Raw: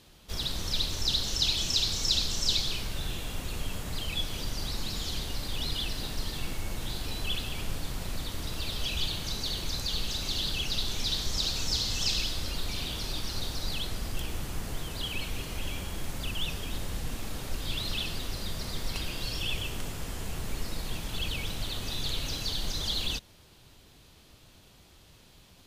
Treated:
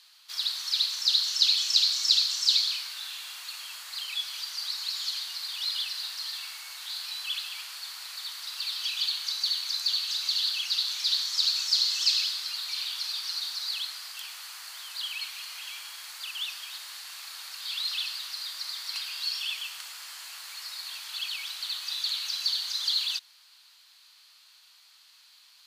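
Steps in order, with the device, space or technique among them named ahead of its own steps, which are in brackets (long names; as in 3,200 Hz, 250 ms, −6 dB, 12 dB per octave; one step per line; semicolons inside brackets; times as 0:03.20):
headphones lying on a table (high-pass filter 1,100 Hz 24 dB per octave; parametric band 4,400 Hz +10 dB 0.3 octaves)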